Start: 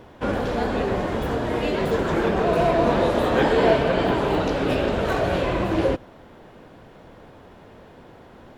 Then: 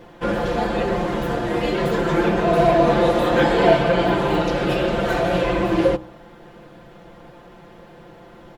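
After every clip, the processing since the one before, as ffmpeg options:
-af "aecho=1:1:5.8:0.96,bandreject=f=63.36:t=h:w=4,bandreject=f=126.72:t=h:w=4,bandreject=f=190.08:t=h:w=4,bandreject=f=253.44:t=h:w=4,bandreject=f=316.8:t=h:w=4,bandreject=f=380.16:t=h:w=4,bandreject=f=443.52:t=h:w=4,bandreject=f=506.88:t=h:w=4,bandreject=f=570.24:t=h:w=4,bandreject=f=633.6:t=h:w=4,bandreject=f=696.96:t=h:w=4,bandreject=f=760.32:t=h:w=4,bandreject=f=823.68:t=h:w=4,bandreject=f=887.04:t=h:w=4,bandreject=f=950.4:t=h:w=4,bandreject=f=1.01376k:t=h:w=4,bandreject=f=1.07712k:t=h:w=4,bandreject=f=1.14048k:t=h:w=4,bandreject=f=1.20384k:t=h:w=4"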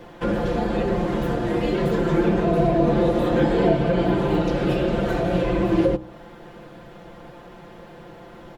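-filter_complex "[0:a]acrossover=split=450[a][b];[b]acompressor=threshold=-33dB:ratio=2.5[c];[a][c]amix=inputs=2:normalize=0,volume=1.5dB"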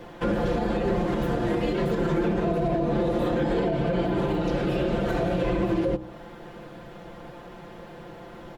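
-af "alimiter=limit=-16.5dB:level=0:latency=1:release=96"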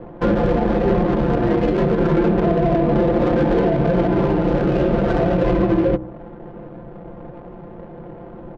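-af "adynamicsmooth=sensitivity=2:basefreq=610,volume=8dB"

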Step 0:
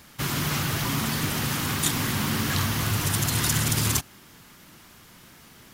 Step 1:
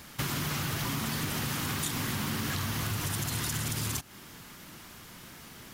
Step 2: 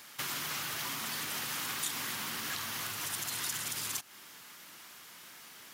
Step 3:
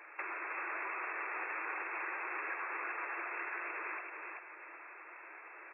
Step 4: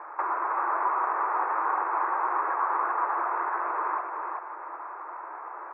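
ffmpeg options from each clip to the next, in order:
-filter_complex "[0:a]asplit=2[a][b];[b]alimiter=limit=-17dB:level=0:latency=1,volume=-1dB[c];[a][c]amix=inputs=2:normalize=0,acompressor=threshold=-26dB:ratio=6,volume=-3.5dB"
-af "highpass=f=1k:p=1,volume=-1dB"
-af "afftfilt=real='re*between(b*sr/4096,310,2700)':imag='im*between(b*sr/4096,310,2700)':win_size=4096:overlap=0.75,acompressor=threshold=-41dB:ratio=6,aecho=1:1:384|768|1152|1536:0.631|0.17|0.046|0.0124,volume=3.5dB"
-af "lowpass=f=1.3k:w=0.5412,lowpass=f=1.3k:w=1.3066,equalizer=f=970:t=o:w=1.2:g=13.5,volume=7dB"

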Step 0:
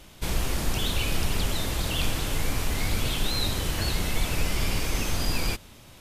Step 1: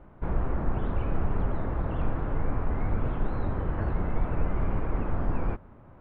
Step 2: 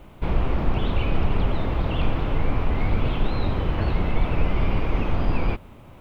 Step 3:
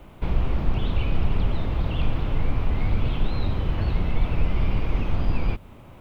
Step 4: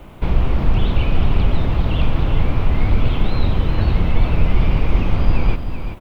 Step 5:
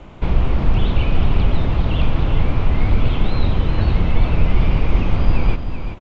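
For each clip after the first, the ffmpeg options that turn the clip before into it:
-af "lowpass=f=1.4k:w=0.5412,lowpass=f=1.4k:w=1.3066"
-af "aexciter=amount=9:drive=2.5:freq=2.4k,volume=5.5dB"
-filter_complex "[0:a]acrossover=split=200|3000[a][b][c];[b]acompressor=threshold=-38dB:ratio=2[d];[a][d][c]amix=inputs=3:normalize=0"
-af "aecho=1:1:384:0.376,volume=6.5dB"
-af "aresample=16000,aresample=44100"

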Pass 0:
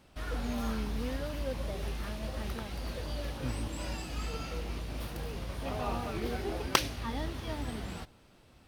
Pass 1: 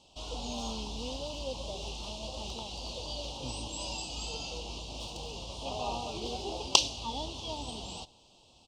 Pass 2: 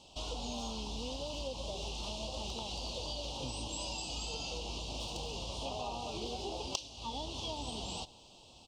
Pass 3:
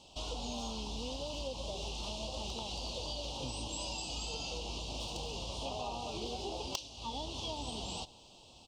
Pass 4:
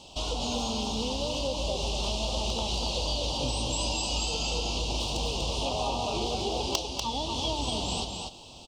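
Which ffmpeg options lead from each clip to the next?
-af "firequalizer=gain_entry='entry(150,0);entry(920,11);entry(1700,-28);entry(2800,14);entry(7600,15);entry(11000,-10)':delay=0.05:min_phase=1,volume=-6.5dB"
-af "acompressor=threshold=-40dB:ratio=6,volume=3.5dB"
-af "asoftclip=type=hard:threshold=-23.5dB"
-af "aecho=1:1:243:0.596,volume=8.5dB"

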